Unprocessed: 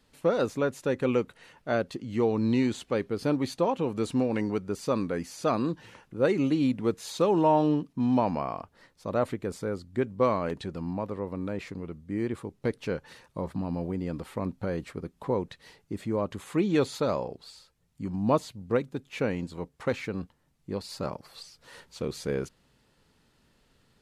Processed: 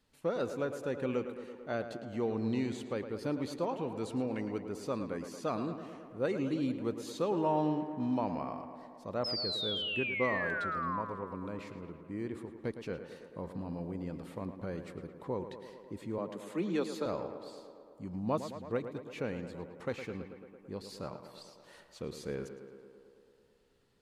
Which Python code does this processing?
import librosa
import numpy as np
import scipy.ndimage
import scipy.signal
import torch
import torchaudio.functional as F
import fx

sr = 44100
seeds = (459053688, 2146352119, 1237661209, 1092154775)

p1 = fx.spec_paint(x, sr, seeds[0], shape='fall', start_s=9.24, length_s=1.78, low_hz=960.0, high_hz=5300.0, level_db=-28.0)
p2 = fx.steep_highpass(p1, sr, hz=160.0, slope=72, at=(16.18, 17.06))
p3 = p2 + fx.echo_tape(p2, sr, ms=110, feedback_pct=80, wet_db=-9, lp_hz=3000.0, drive_db=12.0, wow_cents=13, dry=0)
y = F.gain(torch.from_numpy(p3), -8.5).numpy()